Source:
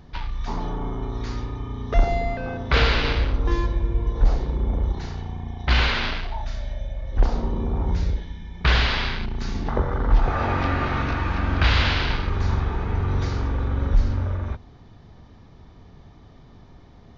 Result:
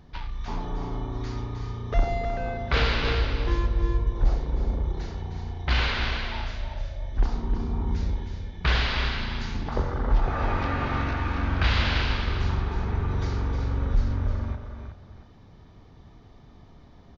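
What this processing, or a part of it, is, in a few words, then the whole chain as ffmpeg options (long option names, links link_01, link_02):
ducked delay: -filter_complex "[0:a]asettb=1/sr,asplit=3[link_01][link_02][link_03];[link_01]atrim=end=7.094[link_04];[link_02]atrim=start=7.09:end=8,asetpts=PTS-STARTPTS,afade=type=in:duration=0.004:curve=qsin,afade=type=out:start_time=0.906:duration=0.004:curve=qsin,equalizer=frequency=560:width_type=o:width=0.44:gain=-12[link_05];[link_03]atrim=start=7.996[link_06];[link_04][link_05]acrossfade=duration=0.004:curve1=hsin:curve2=qsin[link_07];[link_07][link_06]acrossfade=duration=0.004:curve1=qsin:curve2=hsin,asplit=3[link_08][link_09][link_10];[link_09]adelay=371,volume=-5dB[link_11];[link_10]apad=whole_len=773651[link_12];[link_11][link_12]sidechaincompress=threshold=-26dB:ratio=8:attack=16:release=1140[link_13];[link_08][link_13]amix=inputs=2:normalize=0,aecho=1:1:310:0.398,volume=-4.5dB"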